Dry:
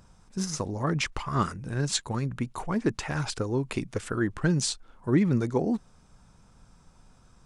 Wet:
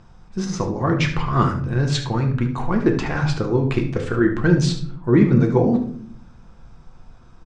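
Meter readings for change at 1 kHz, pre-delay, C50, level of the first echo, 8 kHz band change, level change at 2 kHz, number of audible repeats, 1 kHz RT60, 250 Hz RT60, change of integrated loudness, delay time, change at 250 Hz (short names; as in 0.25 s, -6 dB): +8.0 dB, 3 ms, 8.0 dB, -11.5 dB, -3.0 dB, +7.5 dB, 1, 0.45 s, 0.95 s, +9.0 dB, 73 ms, +9.0 dB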